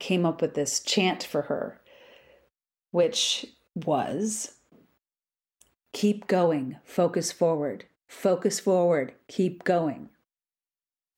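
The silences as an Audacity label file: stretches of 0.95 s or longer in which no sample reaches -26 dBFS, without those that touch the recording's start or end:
1.680000	2.940000	silence
4.450000	5.950000	silence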